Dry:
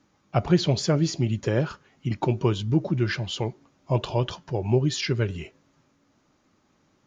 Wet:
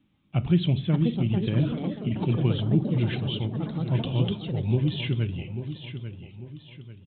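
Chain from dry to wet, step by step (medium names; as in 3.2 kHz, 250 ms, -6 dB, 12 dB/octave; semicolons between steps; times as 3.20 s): high-order bell 860 Hz -12 dB 2.6 oct; feedback delay 843 ms, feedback 41%, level -10 dB; on a send at -16 dB: reverberation RT60 0.50 s, pre-delay 8 ms; on the sum: ever faster or slower copies 669 ms, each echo +5 st, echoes 3, each echo -6 dB; resampled via 8 kHz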